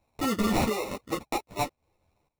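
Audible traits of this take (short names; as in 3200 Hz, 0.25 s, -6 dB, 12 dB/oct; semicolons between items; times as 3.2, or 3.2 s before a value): aliases and images of a low sample rate 1600 Hz, jitter 0%; random-step tremolo 4.4 Hz, depth 85%; a shimmering, thickened sound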